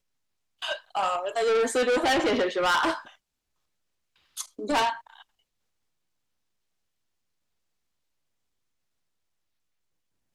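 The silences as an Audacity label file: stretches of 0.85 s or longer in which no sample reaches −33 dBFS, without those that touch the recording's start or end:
2.980000	4.370000	silence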